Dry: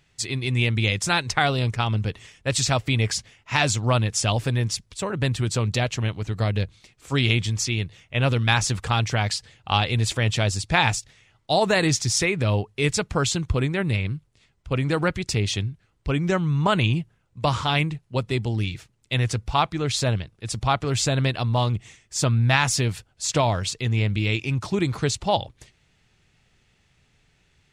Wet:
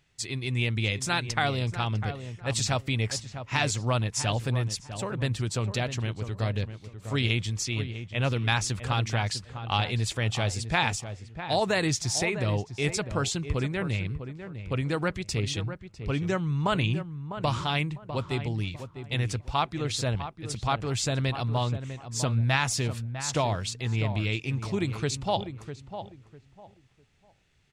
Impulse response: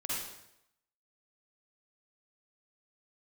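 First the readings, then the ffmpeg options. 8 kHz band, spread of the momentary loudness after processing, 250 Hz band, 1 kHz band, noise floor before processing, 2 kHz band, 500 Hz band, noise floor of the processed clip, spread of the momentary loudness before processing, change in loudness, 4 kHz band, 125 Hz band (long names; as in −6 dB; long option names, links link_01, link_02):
−5.5 dB, 8 LU, −5.0 dB, −5.0 dB, −65 dBFS, −5.5 dB, −5.0 dB, −58 dBFS, 8 LU, −5.5 dB, −5.5 dB, −5.0 dB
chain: -filter_complex "[0:a]asplit=2[link_01][link_02];[link_02]adelay=651,lowpass=frequency=1500:poles=1,volume=-9.5dB,asplit=2[link_03][link_04];[link_04]adelay=651,lowpass=frequency=1500:poles=1,volume=0.26,asplit=2[link_05][link_06];[link_06]adelay=651,lowpass=frequency=1500:poles=1,volume=0.26[link_07];[link_01][link_03][link_05][link_07]amix=inputs=4:normalize=0,volume=-5.5dB"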